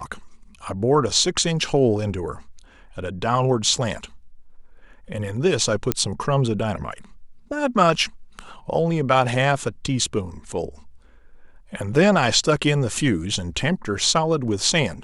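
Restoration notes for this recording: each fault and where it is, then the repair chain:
5.92 pop -2 dBFS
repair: de-click

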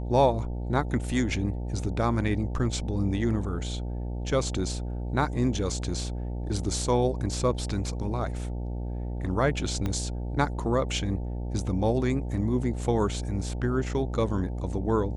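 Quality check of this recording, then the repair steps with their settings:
buzz 60 Hz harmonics 15 -32 dBFS
9.86 pop -17 dBFS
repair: de-click; de-hum 60 Hz, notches 15

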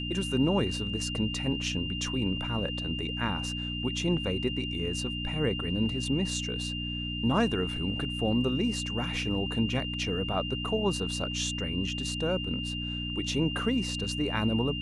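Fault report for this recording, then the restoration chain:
hum 60 Hz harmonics 5 -36 dBFS
tone 2800 Hz -35 dBFS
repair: de-hum 60 Hz, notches 5; notch 2800 Hz, Q 30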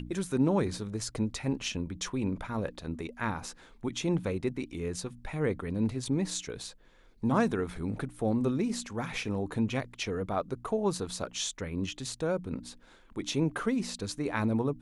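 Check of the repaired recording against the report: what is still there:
none

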